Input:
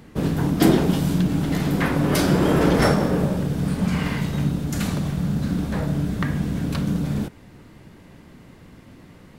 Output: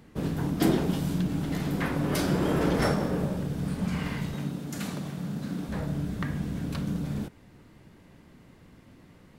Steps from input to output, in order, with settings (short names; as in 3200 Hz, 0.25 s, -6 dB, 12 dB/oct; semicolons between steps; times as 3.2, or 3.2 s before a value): 4.34–5.69 HPF 160 Hz 12 dB/oct; gain -7.5 dB